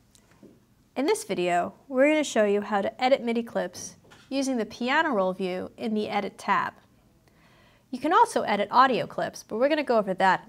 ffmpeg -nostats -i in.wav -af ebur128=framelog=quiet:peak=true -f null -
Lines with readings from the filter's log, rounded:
Integrated loudness:
  I:         -25.4 LUFS
  Threshold: -36.3 LUFS
Loudness range:
  LRA:         3.5 LU
  Threshold: -46.6 LUFS
  LRA low:   -28.5 LUFS
  LRA high:  -25.1 LUFS
True peak:
  Peak:       -5.8 dBFS